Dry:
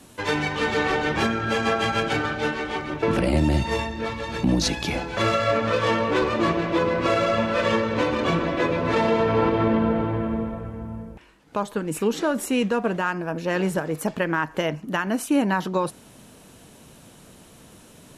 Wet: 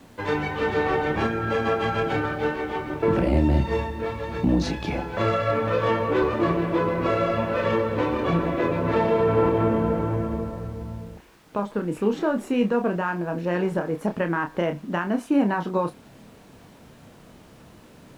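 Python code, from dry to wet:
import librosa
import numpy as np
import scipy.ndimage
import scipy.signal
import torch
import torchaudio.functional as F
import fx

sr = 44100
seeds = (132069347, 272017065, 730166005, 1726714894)

y = fx.quant_dither(x, sr, seeds[0], bits=8, dither='triangular')
y = fx.lowpass(y, sr, hz=1300.0, slope=6)
y = fx.doubler(y, sr, ms=29.0, db=-7)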